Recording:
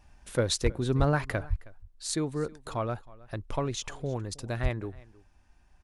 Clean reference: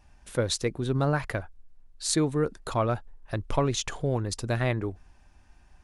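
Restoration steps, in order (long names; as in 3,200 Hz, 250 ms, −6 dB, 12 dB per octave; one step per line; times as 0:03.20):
clipped peaks rebuilt −15.5 dBFS
high-pass at the plosives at 0:00.63/0:00.98/0:01.49/0:04.62
echo removal 317 ms −22 dB
level 0 dB, from 0:01.83 +5.5 dB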